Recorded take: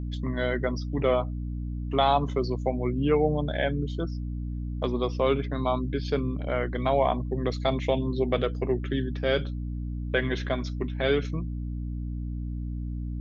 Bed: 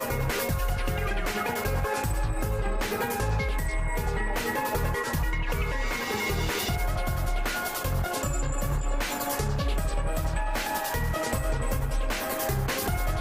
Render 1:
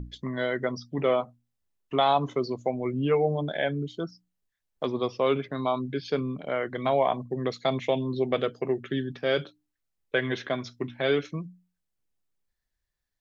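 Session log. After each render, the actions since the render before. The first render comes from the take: hum notches 60/120/180/240/300 Hz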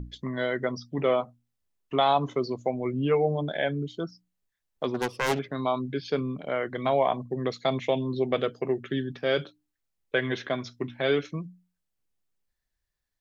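4.94–5.39 s: self-modulated delay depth 0.68 ms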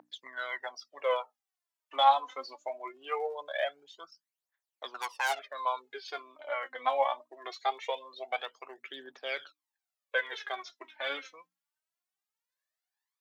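phaser 0.22 Hz, delay 4 ms, feedback 73%; ladder high-pass 630 Hz, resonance 30%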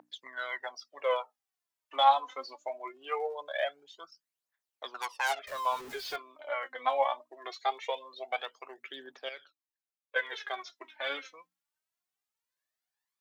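5.47–6.16 s: jump at every zero crossing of -40 dBFS; 9.29–10.16 s: gain -10 dB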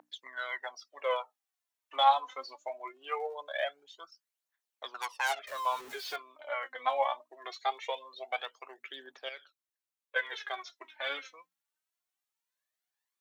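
bass shelf 290 Hz -10.5 dB; band-stop 4.9 kHz, Q 20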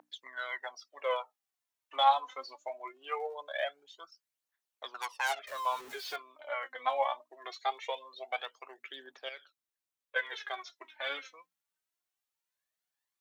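trim -1 dB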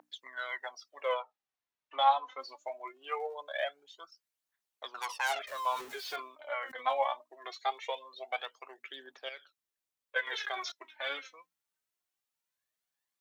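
1.14–2.40 s: distance through air 130 m; 4.93–6.99 s: decay stretcher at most 120 dB/s; 10.27–10.72 s: level flattener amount 70%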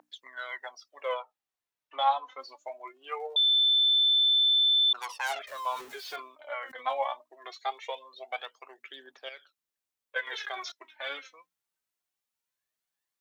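3.36–4.93 s: bleep 3.53 kHz -20 dBFS

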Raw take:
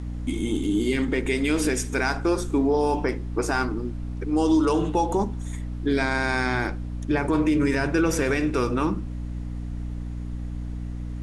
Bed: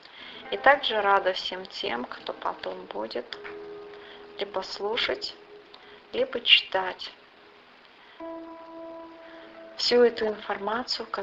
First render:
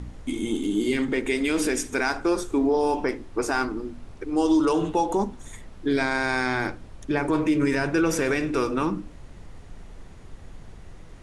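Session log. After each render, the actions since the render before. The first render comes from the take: de-hum 60 Hz, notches 5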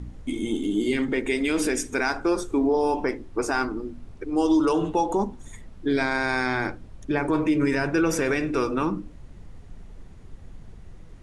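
noise reduction 6 dB, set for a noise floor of -44 dBFS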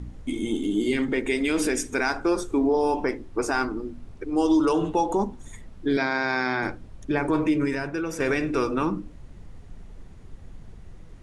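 5.97–6.63 s: elliptic band-pass 140–5500 Hz; 7.49–8.20 s: fade out quadratic, to -8 dB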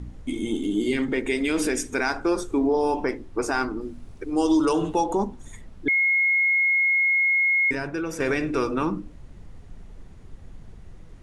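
3.81–5.04 s: treble shelf 5.4 kHz +7.5 dB; 5.88–7.71 s: bleep 2.16 kHz -17.5 dBFS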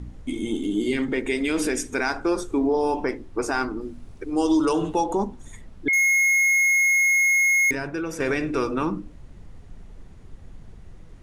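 5.93–7.71 s: waveshaping leveller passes 3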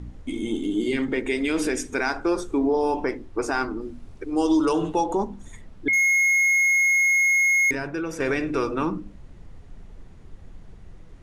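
treble shelf 9.5 kHz -7 dB; hum notches 50/100/150/200/250 Hz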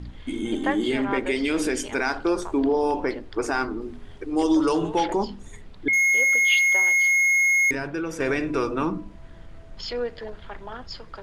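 add bed -9 dB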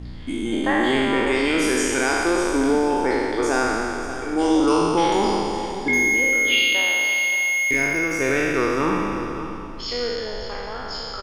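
spectral sustain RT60 2.49 s; delay 578 ms -12.5 dB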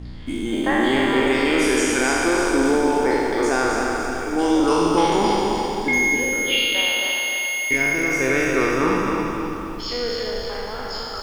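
bit-crushed delay 266 ms, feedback 35%, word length 8-bit, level -4.5 dB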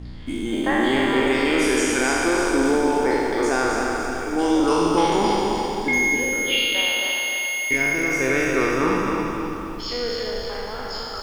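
trim -1 dB

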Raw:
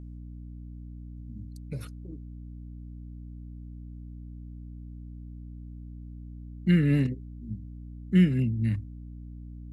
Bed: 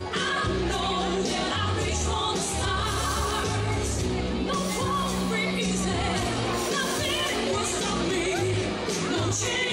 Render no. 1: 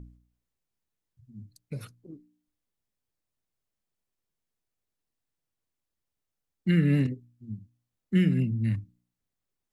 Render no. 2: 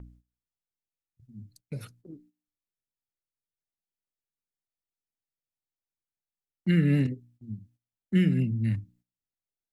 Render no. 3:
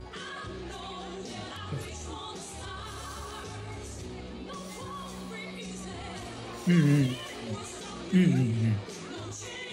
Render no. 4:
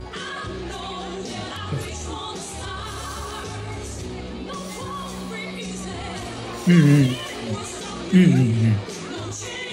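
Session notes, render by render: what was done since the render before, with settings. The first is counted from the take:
de-hum 60 Hz, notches 5
band-stop 1.1 kHz, Q 7.9; gate -58 dBFS, range -13 dB
add bed -13.5 dB
trim +8.5 dB

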